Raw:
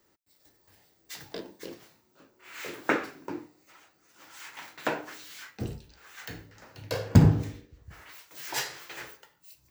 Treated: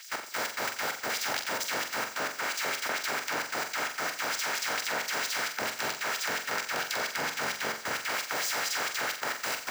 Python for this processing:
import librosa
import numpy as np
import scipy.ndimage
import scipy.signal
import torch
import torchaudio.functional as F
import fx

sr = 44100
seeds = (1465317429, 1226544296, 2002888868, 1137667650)

y = fx.bin_compress(x, sr, power=0.2)
y = fx.filter_lfo_highpass(y, sr, shape='sine', hz=4.4, low_hz=560.0, high_hz=6400.0, q=1.4)
y = fx.level_steps(y, sr, step_db=16)
y = fx.room_flutter(y, sr, wall_m=7.6, rt60_s=0.42)